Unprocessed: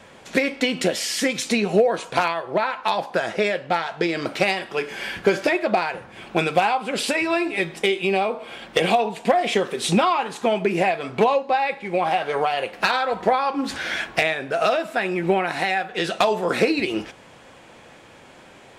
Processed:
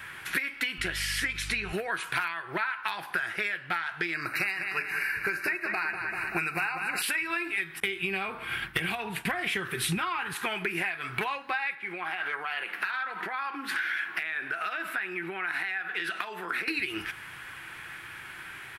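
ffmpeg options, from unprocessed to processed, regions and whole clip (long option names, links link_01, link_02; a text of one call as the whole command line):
ffmpeg -i in.wav -filter_complex "[0:a]asettb=1/sr,asplit=3[link_01][link_02][link_03];[link_01]atrim=end=0.784[link_04];[link_02]atrim=start=0.78:end=1.73,asetpts=PTS-STARTPTS,afade=type=in:duration=0.004:curve=qsin,afade=type=out:start_time=0.946:duration=0.004:curve=qsin,lowpass=7900,aeval=exprs='val(0)+0.0251*(sin(2*PI*50*n/s)+sin(2*PI*2*50*n/s)/2+sin(2*PI*3*50*n/s)/3+sin(2*PI*4*50*n/s)/4+sin(2*PI*5*50*n/s)/5)':channel_layout=same[link_05];[link_03]atrim=start=1.726[link_06];[link_04][link_05]acrossfade=duration=0.004:curve1=hsin:curve2=qsin[link_07];[link_07][link_06]acrossfade=duration=0.004:curve1=qsin:curve2=hsin,asettb=1/sr,asplit=3[link_08][link_09][link_10];[link_08]atrim=end=4.144[link_11];[link_09]atrim=start=4.14:end=7.02,asetpts=PTS-STARTPTS,afade=type=in:duration=0.004:curve=qsin,afade=type=out:start_time=2.876:duration=0.004:curve=qsin,asuperstop=centerf=3300:order=20:qfactor=3.4,asplit=2[link_12][link_13];[link_13]adelay=194,lowpass=frequency=4900:poles=1,volume=-9dB,asplit=2[link_14][link_15];[link_15]adelay=194,lowpass=frequency=4900:poles=1,volume=0.54,asplit=2[link_16][link_17];[link_17]adelay=194,lowpass=frequency=4900:poles=1,volume=0.54,asplit=2[link_18][link_19];[link_19]adelay=194,lowpass=frequency=4900:poles=1,volume=0.54,asplit=2[link_20][link_21];[link_21]adelay=194,lowpass=frequency=4900:poles=1,volume=0.54,asplit=2[link_22][link_23];[link_23]adelay=194,lowpass=frequency=4900:poles=1,volume=0.54[link_24];[link_12][link_14][link_16][link_18][link_20][link_22][link_24]amix=inputs=7:normalize=0,atrim=end_sample=127008[link_25];[link_10]atrim=start=7.016[link_26];[link_11][link_25]acrossfade=duration=0.004:curve1=hsin:curve2=qsin[link_27];[link_27][link_26]acrossfade=duration=0.004:curve1=qsin:curve2=hsin,asettb=1/sr,asplit=3[link_28][link_29][link_30];[link_28]atrim=end=7.804[link_31];[link_29]atrim=start=7.8:end=10.34,asetpts=PTS-STARTPTS,afade=type=in:duration=0.004:curve=qsin,afade=type=out:start_time=2.536:duration=0.004:curve=qsin,agate=range=-33dB:threshold=-37dB:ratio=3:release=100:detection=peak,equalizer=frequency=81:width=0.4:gain=14.5[link_32];[link_30]atrim=start=10.336[link_33];[link_31][link_32]acrossfade=duration=0.004:curve1=hsin:curve2=qsin[link_34];[link_34][link_33]acrossfade=duration=0.004:curve1=qsin:curve2=hsin,asettb=1/sr,asplit=3[link_35][link_36][link_37];[link_35]atrim=end=11.754[link_38];[link_36]atrim=start=11.75:end=16.68,asetpts=PTS-STARTPTS,afade=type=in:duration=0.004:curve=qsin,afade=type=out:start_time=4.926:duration=0.004:curve=qsin,highshelf=frequency=5000:gain=-9,acompressor=threshold=-29dB:ratio=4:attack=3.2:release=140:knee=1:detection=peak,highpass=frequency=190:width=0.5412,highpass=frequency=190:width=1.3066[link_39];[link_37]atrim=start=16.676[link_40];[link_38][link_39]acrossfade=duration=0.004:curve1=hsin:curve2=qsin[link_41];[link_41][link_40]acrossfade=duration=0.004:curve1=qsin:curve2=hsin,firequalizer=gain_entry='entry(140,0);entry(230,-13);entry(340,-3);entry(520,-17);entry(820,-5);entry(1500,12);entry(3500,2);entry(6900,-4);entry(11000,15)':delay=0.05:min_phase=1,acompressor=threshold=-28dB:ratio=6" out.wav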